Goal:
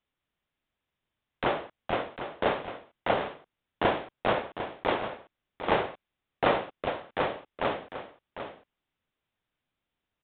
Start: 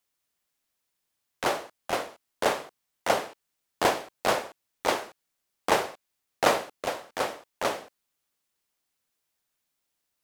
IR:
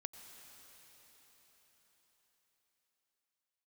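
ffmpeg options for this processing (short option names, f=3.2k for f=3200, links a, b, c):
-filter_complex "[0:a]aresample=8000,aresample=44100,asplit=2[a][b];[b]alimiter=limit=-19dB:level=0:latency=1:release=62,volume=-1dB[c];[a][c]amix=inputs=2:normalize=0,lowshelf=f=230:g=9.5,aecho=1:1:751:0.316,volume=-6dB"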